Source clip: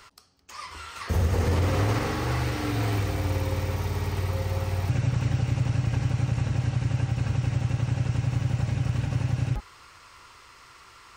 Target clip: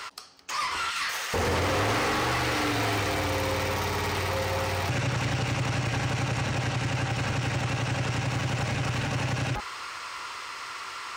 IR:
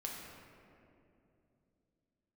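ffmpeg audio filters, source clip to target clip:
-filter_complex "[0:a]asplit=2[s0][s1];[s1]aeval=exprs='0.0282*(abs(mod(val(0)/0.0282+3,4)-2)-1)':c=same,volume=0.316[s2];[s0][s2]amix=inputs=2:normalize=0,asettb=1/sr,asplit=3[s3][s4][s5];[s3]atrim=end=0.904[s6];[s4]atrim=start=0.9:end=1.34,asetpts=PTS-STARTPTS,afade=t=in:d=0.004:c=qsin,afade=t=out:st=0.436:d=0.004:c=qsin,highpass=1500[s7];[s5]atrim=start=1.336[s8];[s6][s7]acrossfade=d=0.004:c1=hsin:c2=qsin[s9];[s9][s8]acrossfade=d=0.004:c1=qsin:c2=hsin,asplit=2[s10][s11];[s11]highpass=f=720:p=1,volume=14.1,asoftclip=type=tanh:threshold=0.2[s12];[s10][s12]amix=inputs=2:normalize=0,lowpass=f=5700:p=1,volume=0.501,volume=0.596"

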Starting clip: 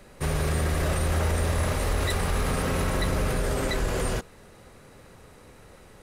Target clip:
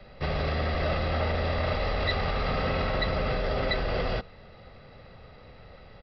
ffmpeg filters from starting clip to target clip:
-filter_complex "[0:a]bandreject=f=1400:w=13,aecho=1:1:1.5:0.46,acrossover=split=250|1300|2200[s0][s1][s2][s3];[s0]asoftclip=type=tanh:threshold=0.0398[s4];[s4][s1][s2][s3]amix=inputs=4:normalize=0,aresample=11025,aresample=44100"

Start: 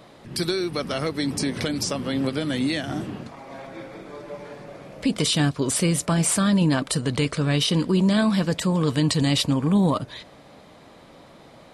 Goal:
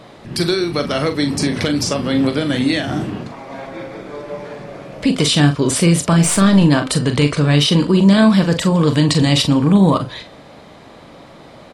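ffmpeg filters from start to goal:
-filter_complex "[0:a]asettb=1/sr,asplit=3[s0][s1][s2];[s0]atrim=end=6.234[s3];[s1]atrim=start=6.23:end=6.64,asetpts=PTS-STARTPTS,afade=t=in:d=0.004:c=qsin,afade=t=out:st=0.406:d=0.004:c=qsin,aeval=exprs='0.299*(cos(1*acos(clip(val(0)/0.299,-1,1)))-cos(1*PI/2))+0.00944*(cos(4*acos(clip(val(0)/0.299,-1,1)))-cos(4*PI/2))+0.00944*(cos(8*acos(clip(val(0)/0.299,-1,1)))-cos(8*PI/2))':c=same[s4];[s2]atrim=start=6.636[s5];[s3][s4]acrossfade=d=0.004:c1=hsin:c2=qsin[s6];[s6][s5]acrossfade=d=0.004:c1=qsin:c2=hsin,highshelf=f=9600:g=-8.5,asplit=2[s7][s8];[s8]adelay=41,volume=0.376[s9];[s7][s9]amix=inputs=2:normalize=0,bandreject=f=257.8:t=h:w=4,bandreject=f=515.6:t=h:w=4,bandreject=f=773.4:t=h:w=4,bandreject=f=1031.2:t=h:w=4,bandreject=f=1289:t=h:w=4,bandreject=f=1546.8:t=h:w=4,bandreject=f=1804.6:t=h:w=4,bandreject=f=2062.4:t=h:w=4,bandreject=f=2320.2:t=h:w=4,bandreject=f=2578:t=h:w=4,bandreject=f=2835.8:t=h:w=4,bandreject=f=3093.6:t=h:w=4,bandreject=f=3351.4:t=h:w=4,bandreject=f=3609.2:t=h:w=4,bandreject=f=3867:t=h:w=4,bandreject=f=4124.8:t=h:w=4,bandreject=f=4382.6:t=h:w=4,bandreject=f=4640.4:t=h:w=4,bandreject=f=4898.2:t=h:w=4,bandreject=f=5156:t=h:w=4,bandreject=f=5413.8:t=h:w=4,bandreject=f=5671.6:t=h:w=4,volume=2.37"

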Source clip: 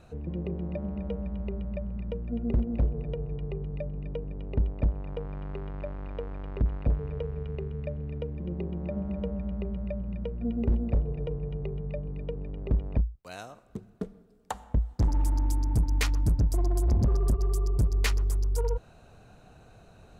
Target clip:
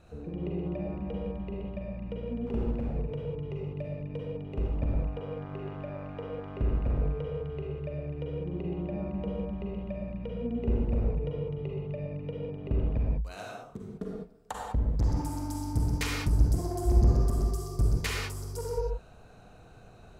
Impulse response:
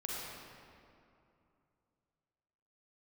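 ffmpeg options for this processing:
-filter_complex "[0:a]asplit=3[s0][s1][s2];[s0]afade=t=out:st=2.45:d=0.02[s3];[s1]asoftclip=type=hard:threshold=0.0562,afade=t=in:st=2.45:d=0.02,afade=t=out:st=4.73:d=0.02[s4];[s2]afade=t=in:st=4.73:d=0.02[s5];[s3][s4][s5]amix=inputs=3:normalize=0[s6];[1:a]atrim=start_sample=2205,afade=t=out:st=0.26:d=0.01,atrim=end_sample=11907[s7];[s6][s7]afir=irnorm=-1:irlink=0"

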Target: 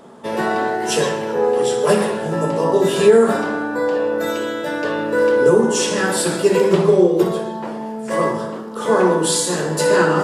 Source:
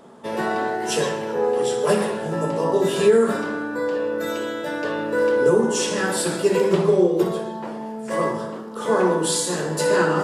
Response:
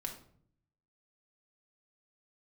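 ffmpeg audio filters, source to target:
-filter_complex "[0:a]asettb=1/sr,asplit=3[s0][s1][s2];[s0]atrim=end=3.084[s3];[s1]atrim=start=3.08:end=4.31,asetpts=PTS-STARTPTS,afade=t=in:d=0.004:c=qsin,afade=t=out:st=1.226:d=0.004:c=qsin,equalizer=f=760:w=3.7:g=8.5[s4];[s2]atrim=start=4.306[s5];[s3][s4]acrossfade=d=0.004:c1=hsin:c2=qsin[s6];[s6][s5]acrossfade=d=0.004:c1=qsin:c2=hsin,volume=1.58"

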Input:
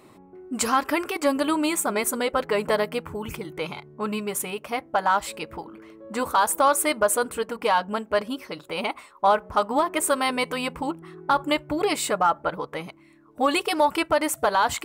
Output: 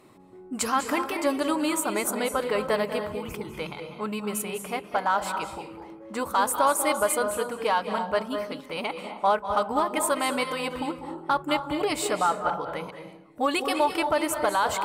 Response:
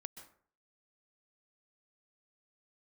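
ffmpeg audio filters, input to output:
-filter_complex "[1:a]atrim=start_sample=2205,asetrate=28224,aresample=44100[s0];[0:a][s0]afir=irnorm=-1:irlink=0"

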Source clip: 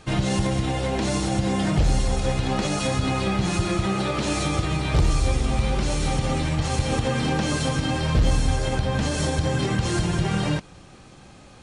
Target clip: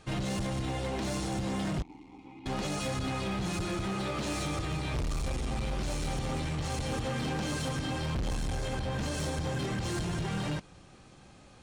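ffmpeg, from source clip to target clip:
-filter_complex "[0:a]volume=11.9,asoftclip=hard,volume=0.0841,asettb=1/sr,asplit=3[s0][s1][s2];[s0]atrim=end=1.824[s3];[s1]atrim=start=1.82:end=2.46,asetpts=PTS-STARTPTS,afade=t=in:d=0.004:c=qsin,afade=t=out:st=0.636:d=0.004:c=qsin,asplit=3[s4][s5][s6];[s4]bandpass=f=300:t=q:w=8,volume=1[s7];[s5]bandpass=f=870:t=q:w=8,volume=0.501[s8];[s6]bandpass=f=2240:t=q:w=8,volume=0.355[s9];[s7][s8][s9]amix=inputs=3:normalize=0[s10];[s2]atrim=start=2.456[s11];[s3][s10]acrossfade=d=0.004:c1=hsin:c2=qsin[s12];[s12][s11]acrossfade=d=0.004:c1=qsin:c2=hsin,volume=0.422"

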